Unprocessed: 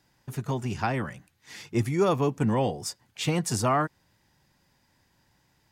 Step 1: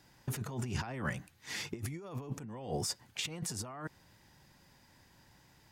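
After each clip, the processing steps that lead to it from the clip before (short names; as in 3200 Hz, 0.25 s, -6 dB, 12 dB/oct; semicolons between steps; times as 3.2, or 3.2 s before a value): negative-ratio compressor -36 dBFS, ratio -1; gain -4 dB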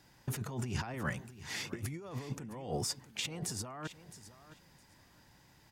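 feedback echo 0.663 s, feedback 18%, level -15 dB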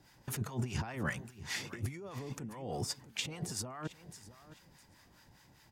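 harmonic tremolo 4.9 Hz, depth 70%, crossover 800 Hz; gain +3.5 dB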